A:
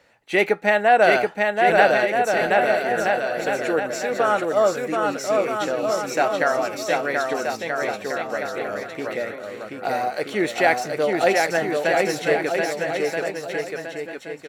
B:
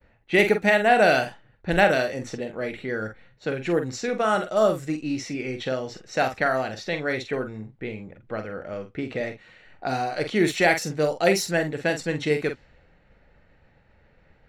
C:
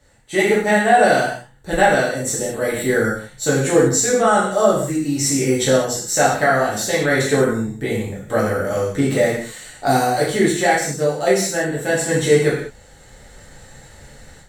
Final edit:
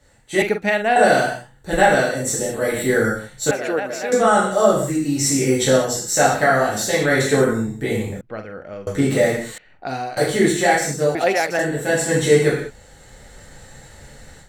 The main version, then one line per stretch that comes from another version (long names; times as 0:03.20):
C
0:00.42–0:00.96: punch in from B
0:03.51–0:04.12: punch in from A
0:08.21–0:08.87: punch in from B
0:09.58–0:10.17: punch in from B
0:11.15–0:11.59: punch in from A